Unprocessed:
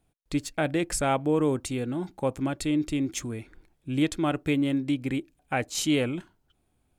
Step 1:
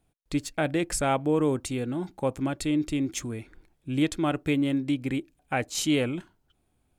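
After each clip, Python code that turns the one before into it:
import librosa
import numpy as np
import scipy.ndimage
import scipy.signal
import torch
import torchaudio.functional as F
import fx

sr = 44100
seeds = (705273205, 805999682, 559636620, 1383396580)

y = x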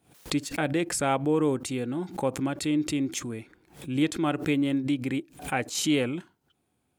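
y = scipy.signal.sosfilt(scipy.signal.butter(2, 120.0, 'highpass', fs=sr, output='sos'), x)
y = fx.notch(y, sr, hz=630.0, q=12.0)
y = fx.pre_swell(y, sr, db_per_s=140.0)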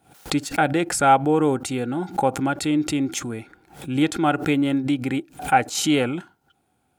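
y = fx.small_body(x, sr, hz=(790.0, 1400.0), ring_ms=30, db=11)
y = y * 10.0 ** (4.5 / 20.0)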